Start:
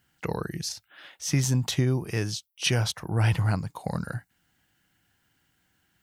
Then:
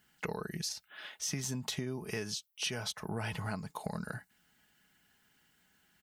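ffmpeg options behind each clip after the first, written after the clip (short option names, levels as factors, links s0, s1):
-af "lowshelf=f=170:g=-6,aecho=1:1:4.7:0.48,acompressor=threshold=0.02:ratio=6"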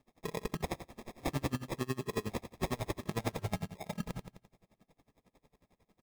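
-af "acrusher=samples=30:mix=1:aa=0.000001,aecho=1:1:86|172|258|344|430:0.316|0.145|0.0669|0.0308|0.0142,aeval=exprs='val(0)*pow(10,-27*(0.5-0.5*cos(2*PI*11*n/s))/20)':c=same,volume=2.11"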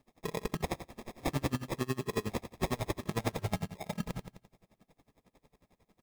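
-af "acrusher=bits=5:mode=log:mix=0:aa=0.000001,volume=1.26"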